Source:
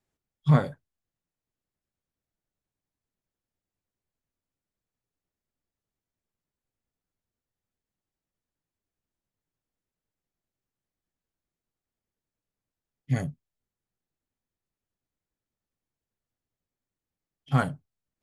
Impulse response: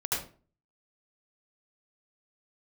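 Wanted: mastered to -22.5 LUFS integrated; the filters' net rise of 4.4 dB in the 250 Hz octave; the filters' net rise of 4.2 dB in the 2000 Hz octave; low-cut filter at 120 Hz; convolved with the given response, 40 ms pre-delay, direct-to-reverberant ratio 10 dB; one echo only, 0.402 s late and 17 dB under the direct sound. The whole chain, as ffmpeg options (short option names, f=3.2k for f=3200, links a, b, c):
-filter_complex "[0:a]highpass=120,equalizer=f=250:t=o:g=7.5,equalizer=f=2k:t=o:g=6,aecho=1:1:402:0.141,asplit=2[a][b];[1:a]atrim=start_sample=2205,adelay=40[c];[b][c]afir=irnorm=-1:irlink=0,volume=-17.5dB[d];[a][d]amix=inputs=2:normalize=0,volume=3dB"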